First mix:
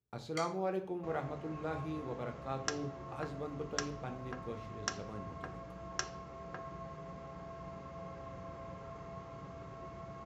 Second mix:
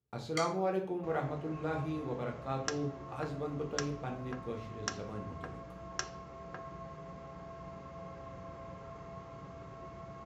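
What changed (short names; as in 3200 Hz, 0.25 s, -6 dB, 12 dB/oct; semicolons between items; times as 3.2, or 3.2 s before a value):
speech: send +6.0 dB; first sound +5.0 dB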